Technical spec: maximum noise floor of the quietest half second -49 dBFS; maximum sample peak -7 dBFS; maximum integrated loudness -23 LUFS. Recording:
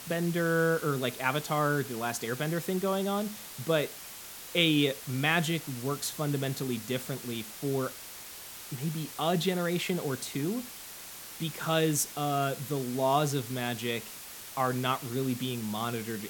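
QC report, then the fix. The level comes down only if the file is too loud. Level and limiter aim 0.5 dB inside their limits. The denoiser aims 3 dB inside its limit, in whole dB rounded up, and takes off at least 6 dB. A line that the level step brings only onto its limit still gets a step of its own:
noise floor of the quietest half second -45 dBFS: fail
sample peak -10.0 dBFS: OK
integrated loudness -30.5 LUFS: OK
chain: denoiser 7 dB, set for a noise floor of -45 dBFS

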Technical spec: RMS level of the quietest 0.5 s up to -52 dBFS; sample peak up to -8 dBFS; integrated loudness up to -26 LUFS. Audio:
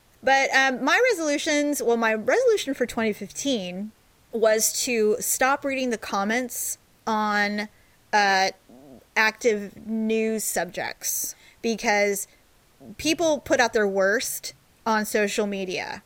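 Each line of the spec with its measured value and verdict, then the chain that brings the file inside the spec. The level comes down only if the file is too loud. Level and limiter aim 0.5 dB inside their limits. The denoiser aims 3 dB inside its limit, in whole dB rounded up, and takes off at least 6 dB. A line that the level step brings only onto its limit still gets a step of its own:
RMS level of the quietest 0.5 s -58 dBFS: OK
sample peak -6.0 dBFS: fail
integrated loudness -23.5 LUFS: fail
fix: gain -3 dB

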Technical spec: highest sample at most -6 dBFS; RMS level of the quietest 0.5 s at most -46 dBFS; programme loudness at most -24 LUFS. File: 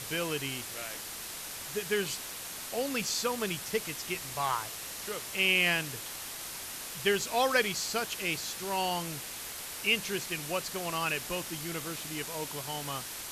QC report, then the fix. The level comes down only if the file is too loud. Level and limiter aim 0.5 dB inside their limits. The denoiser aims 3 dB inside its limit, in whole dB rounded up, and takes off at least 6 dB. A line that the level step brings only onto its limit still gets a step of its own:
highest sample -13.5 dBFS: OK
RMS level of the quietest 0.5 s -41 dBFS: fail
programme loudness -32.0 LUFS: OK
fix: denoiser 8 dB, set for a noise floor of -41 dBFS

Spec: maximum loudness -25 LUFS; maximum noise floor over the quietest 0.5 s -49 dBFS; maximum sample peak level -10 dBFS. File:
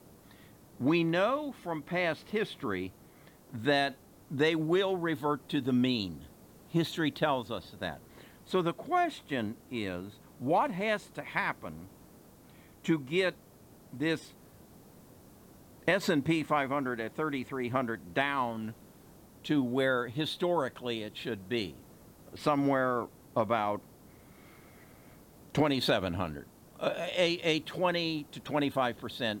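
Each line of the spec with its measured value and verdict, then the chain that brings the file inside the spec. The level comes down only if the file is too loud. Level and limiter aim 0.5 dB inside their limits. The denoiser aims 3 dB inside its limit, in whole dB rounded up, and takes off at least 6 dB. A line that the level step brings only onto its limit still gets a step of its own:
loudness -31.5 LUFS: OK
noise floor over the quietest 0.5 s -57 dBFS: OK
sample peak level -15.0 dBFS: OK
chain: none

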